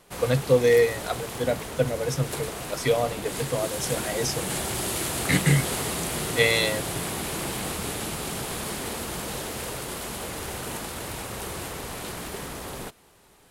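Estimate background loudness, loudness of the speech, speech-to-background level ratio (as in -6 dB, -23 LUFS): -31.0 LUFS, -25.0 LUFS, 6.0 dB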